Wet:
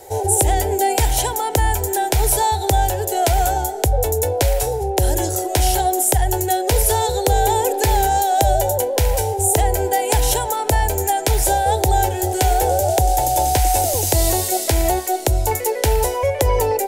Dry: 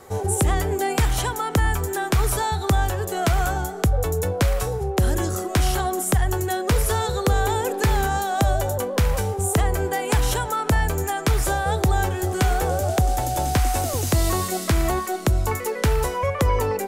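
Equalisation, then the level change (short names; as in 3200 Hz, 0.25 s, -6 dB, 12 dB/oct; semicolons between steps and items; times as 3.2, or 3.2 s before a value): bell 910 Hz +11.5 dB 0.88 oct; high shelf 5900 Hz +7.5 dB; fixed phaser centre 480 Hz, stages 4; +3.5 dB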